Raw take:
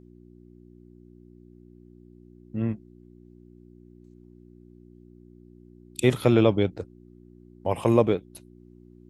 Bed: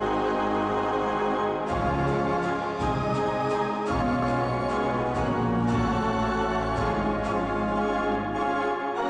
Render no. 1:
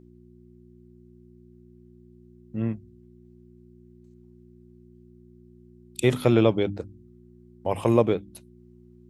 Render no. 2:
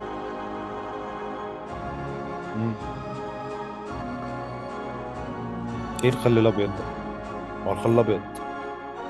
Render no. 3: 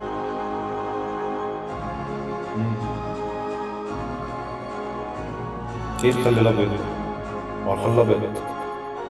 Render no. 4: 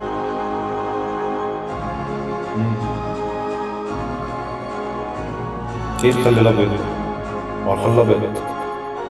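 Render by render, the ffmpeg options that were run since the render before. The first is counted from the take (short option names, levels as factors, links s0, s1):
-af "bandreject=f=50:t=h:w=4,bandreject=f=100:t=h:w=4,bandreject=f=150:t=h:w=4,bandreject=f=200:t=h:w=4,bandreject=f=250:t=h:w=4,bandreject=f=300:t=h:w=4"
-filter_complex "[1:a]volume=0.422[s0];[0:a][s0]amix=inputs=2:normalize=0"
-filter_complex "[0:a]asplit=2[s0][s1];[s1]adelay=19,volume=0.794[s2];[s0][s2]amix=inputs=2:normalize=0,aecho=1:1:123|246|369|492|615:0.398|0.187|0.0879|0.0413|0.0194"
-af "volume=1.68,alimiter=limit=0.794:level=0:latency=1"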